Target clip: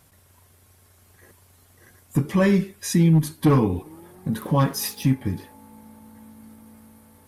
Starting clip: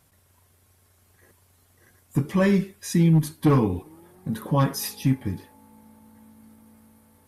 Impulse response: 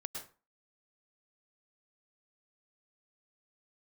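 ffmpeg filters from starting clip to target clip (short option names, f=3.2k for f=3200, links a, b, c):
-filter_complex "[0:a]asplit=2[a][b];[b]acompressor=threshold=-30dB:ratio=6,volume=-2dB[c];[a][c]amix=inputs=2:normalize=0,asettb=1/sr,asplit=3[d][e][f];[d]atrim=end=4.394[g];[e]atrim=start=4.39:end=5.1,asetpts=PTS-STARTPTS,afade=t=in:d=0.004:c=qsin,afade=t=out:st=0.706:d=0.004:c=qsin,aeval=exprs='sgn(val(0))*max(abs(val(0))-0.00473,0)':c=same[h];[f]atrim=start=5.096[i];[g][h]acrossfade=d=0.004:c1=hsin:c2=qsin[j];[j][i]acrossfade=d=0.004:c1=qsin:c2=hsin"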